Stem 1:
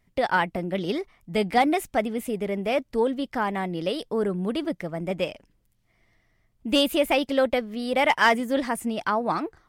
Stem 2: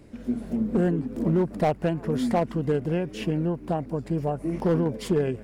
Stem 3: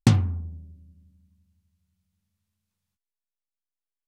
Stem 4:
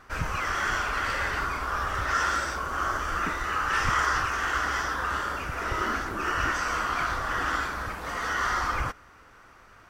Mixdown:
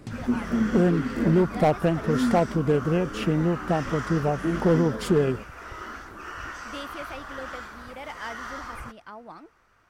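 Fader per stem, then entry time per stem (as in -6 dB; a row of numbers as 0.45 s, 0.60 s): -18.0 dB, +2.5 dB, -20.0 dB, -10.0 dB; 0.00 s, 0.00 s, 0.00 s, 0.00 s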